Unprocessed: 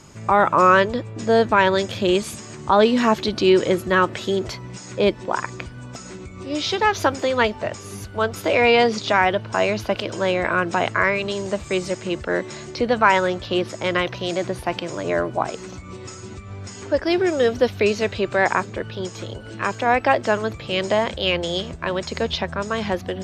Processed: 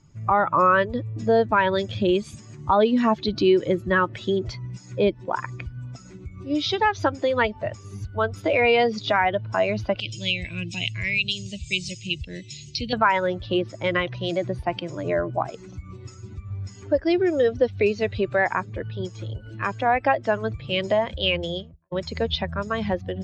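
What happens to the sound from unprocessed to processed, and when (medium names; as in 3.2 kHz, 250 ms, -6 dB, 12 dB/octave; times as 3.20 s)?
10.00–12.93 s: FFT filter 140 Hz 0 dB, 1.4 kHz -23 dB, 2.6 kHz +7 dB
21.39–21.92 s: studio fade out
whole clip: expander on every frequency bin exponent 1.5; low-pass 3.8 kHz 12 dB/octave; compression 2:1, threshold -26 dBFS; trim +5.5 dB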